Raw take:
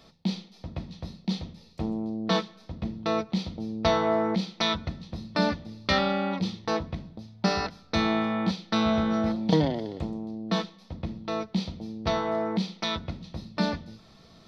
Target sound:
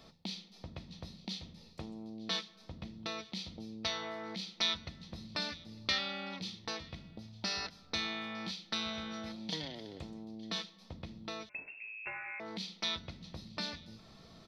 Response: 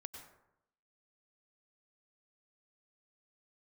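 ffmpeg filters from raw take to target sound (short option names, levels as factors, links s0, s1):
-filter_complex "[0:a]acrossover=split=2000[s0][s1];[s0]acompressor=threshold=0.00891:ratio=5[s2];[s1]aecho=1:1:904:0.0841[s3];[s2][s3]amix=inputs=2:normalize=0,asettb=1/sr,asplit=3[s4][s5][s6];[s4]atrim=end=11.494[s7];[s5]atrim=start=11.49:end=12.4,asetpts=PTS-STARTPTS,afade=t=in:d=0.004:c=qsin,afade=t=out:st=0.906:d=0.004:c=qsin,lowpass=f=2400:t=q:w=0.5098,lowpass=f=2400:t=q:w=0.6013,lowpass=f=2400:t=q:w=0.9,lowpass=f=2400:t=q:w=2.563,afreqshift=-2800[s8];[s6]atrim=start=12.396[s9];[s7][s8]acrossfade=d=0.004:c1=hsin:c2=qsin[s10];[s10][s9]acrossfade=d=0.004:c1=qsin:c2=hsin,volume=0.75"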